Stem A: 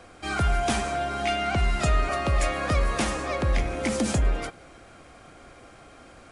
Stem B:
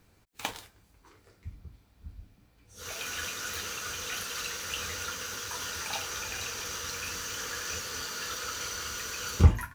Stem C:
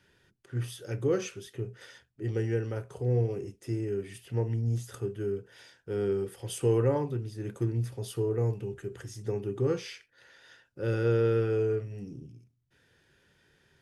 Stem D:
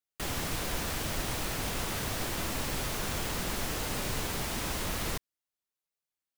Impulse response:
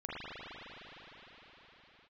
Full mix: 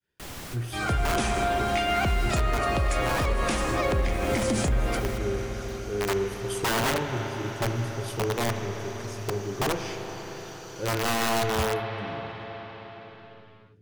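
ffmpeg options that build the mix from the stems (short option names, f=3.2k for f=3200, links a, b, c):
-filter_complex "[0:a]adelay=500,volume=-3.5dB,asplit=2[a][b];[b]volume=-6.5dB[c];[1:a]equalizer=f=5.3k:w=1.5:g=4.5,adelay=2150,volume=-14dB[d];[2:a]agate=range=-33dB:threshold=-54dB:ratio=3:detection=peak,aeval=exprs='(mod(11.9*val(0)+1,2)-1)/11.9':c=same,volume=-1dB,asplit=3[e][f][g];[f]volume=-6.5dB[h];[3:a]volume=-5.5dB[i];[g]apad=whole_len=280967[j];[i][j]sidechaincompress=threshold=-40dB:ratio=8:attack=29:release=1440[k];[a][k]amix=inputs=2:normalize=0,dynaudnorm=f=320:g=11:m=11.5dB,alimiter=limit=-12dB:level=0:latency=1:release=306,volume=0dB[l];[4:a]atrim=start_sample=2205[m];[c][h]amix=inputs=2:normalize=0[n];[n][m]afir=irnorm=-1:irlink=0[o];[d][e][l][o]amix=inputs=4:normalize=0,alimiter=limit=-16dB:level=0:latency=1:release=202"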